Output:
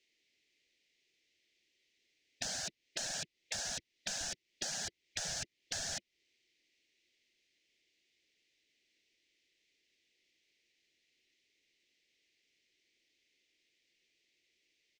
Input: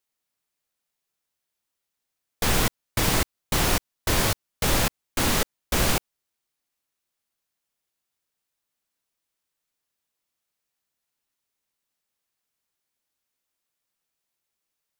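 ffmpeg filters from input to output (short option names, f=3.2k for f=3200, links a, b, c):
-filter_complex "[0:a]firequalizer=gain_entry='entry(190,0);entry(340,12);entry(1100,-25);entry(2000,14);entry(6100,5);entry(12000,-26)':delay=0.05:min_phase=1,afftfilt=real='re*lt(hypot(re,im),0.112)':imag='im*lt(hypot(re,im),0.112)':win_size=1024:overlap=0.75,acrossover=split=210[a][b];[b]acompressor=threshold=-40dB:ratio=4[c];[a][c]amix=inputs=2:normalize=0,volume=1dB"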